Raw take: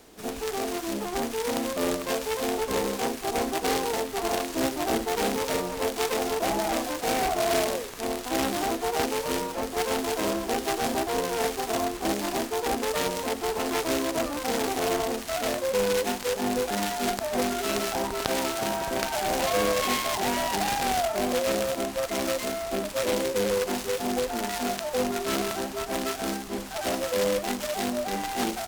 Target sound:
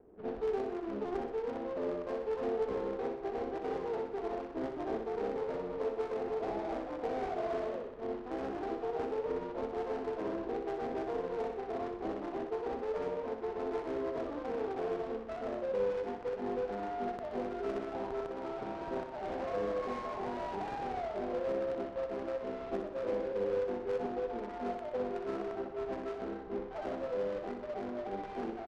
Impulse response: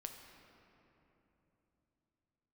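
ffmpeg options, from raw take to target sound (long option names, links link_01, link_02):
-af "acrusher=bits=2:mode=log:mix=0:aa=0.000001,equalizer=frequency=420:width_type=o:width=0.57:gain=7.5,alimiter=limit=-14dB:level=0:latency=1:release=411,lowpass=1500,adynamicsmooth=sensitivity=5.5:basefreq=550,aecho=1:1:62|124|186|248|310|372|434:0.447|0.255|0.145|0.0827|0.0472|0.0269|0.0153,volume=-8.5dB"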